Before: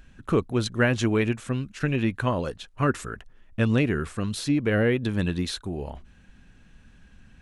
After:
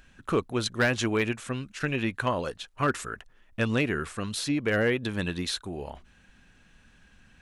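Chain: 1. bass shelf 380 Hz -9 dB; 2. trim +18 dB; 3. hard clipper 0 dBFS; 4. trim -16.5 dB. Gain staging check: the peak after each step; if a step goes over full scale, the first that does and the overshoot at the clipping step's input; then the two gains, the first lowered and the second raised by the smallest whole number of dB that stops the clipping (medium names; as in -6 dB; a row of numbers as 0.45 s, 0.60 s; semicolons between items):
-10.5 dBFS, +7.5 dBFS, 0.0 dBFS, -16.5 dBFS; step 2, 7.5 dB; step 2 +10 dB, step 4 -8.5 dB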